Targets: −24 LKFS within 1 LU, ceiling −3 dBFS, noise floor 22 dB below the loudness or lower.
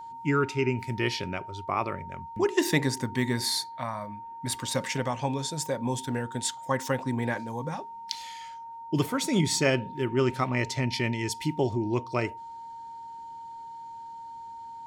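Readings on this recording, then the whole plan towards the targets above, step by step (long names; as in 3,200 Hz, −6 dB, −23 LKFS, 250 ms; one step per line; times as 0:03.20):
interfering tone 920 Hz; level of the tone −39 dBFS; integrated loudness −29.0 LKFS; sample peak −9.0 dBFS; target loudness −24.0 LKFS
→ notch filter 920 Hz, Q 30
level +5 dB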